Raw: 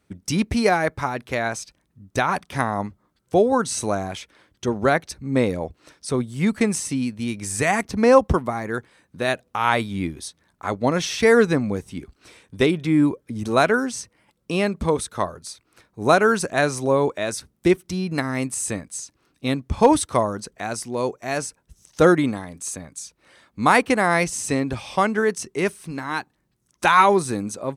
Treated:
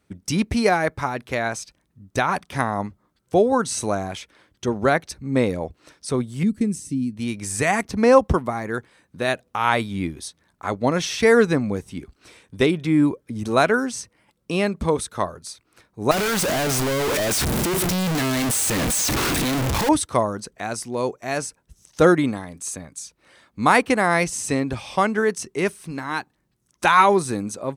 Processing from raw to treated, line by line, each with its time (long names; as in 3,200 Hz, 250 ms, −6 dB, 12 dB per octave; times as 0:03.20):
0:06.43–0:07.17: drawn EQ curve 310 Hz 0 dB, 780 Hz −22 dB, 8,400 Hz −8 dB
0:16.11–0:19.89: sign of each sample alone